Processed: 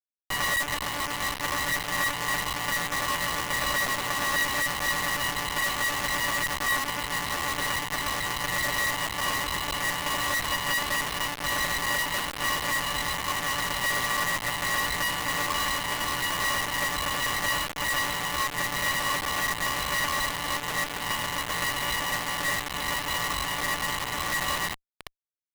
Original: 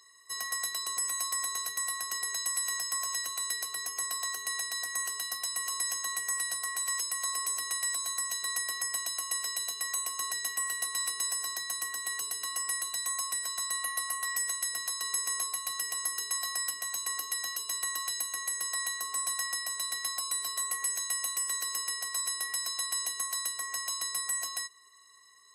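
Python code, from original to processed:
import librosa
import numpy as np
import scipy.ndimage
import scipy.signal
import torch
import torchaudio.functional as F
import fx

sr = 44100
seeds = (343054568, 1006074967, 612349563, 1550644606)

p1 = fx.over_compress(x, sr, threshold_db=-40.0, ratio=-1.0)
p2 = x + F.gain(torch.from_numpy(p1), 1.5).numpy()
p3 = fx.echo_multitap(p2, sr, ms=(83, 86, 585), db=(-8.5, -12.0, -10.0))
p4 = fx.lpc_monotone(p3, sr, seeds[0], pitch_hz=290.0, order=16)
p5 = fx.low_shelf(p4, sr, hz=130.0, db=-9.0)
p6 = fx.quant_dither(p5, sr, seeds[1], bits=6, dither='none')
p7 = fx.running_max(p6, sr, window=5)
y = F.gain(torch.from_numpy(p7), 8.5).numpy()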